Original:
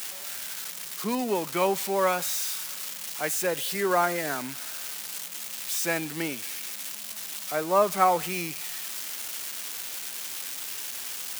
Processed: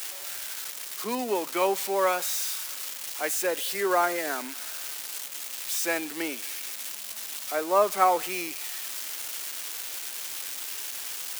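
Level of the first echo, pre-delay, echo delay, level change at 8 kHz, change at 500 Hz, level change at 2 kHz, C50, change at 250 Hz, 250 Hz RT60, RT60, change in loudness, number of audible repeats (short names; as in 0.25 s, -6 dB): none, none, none, 0.0 dB, 0.0 dB, 0.0 dB, none, -2.5 dB, none, none, 0.0 dB, none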